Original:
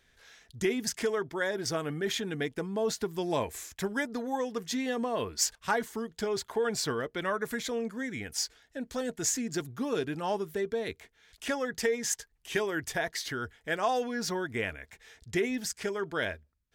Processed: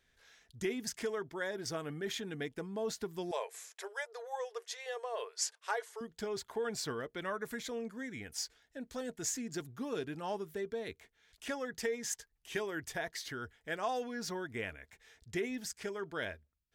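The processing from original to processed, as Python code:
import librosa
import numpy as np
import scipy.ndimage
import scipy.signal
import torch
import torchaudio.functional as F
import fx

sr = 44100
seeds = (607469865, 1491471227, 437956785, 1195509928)

y = fx.brickwall_bandpass(x, sr, low_hz=390.0, high_hz=12000.0, at=(3.31, 6.01))
y = y * librosa.db_to_amplitude(-7.0)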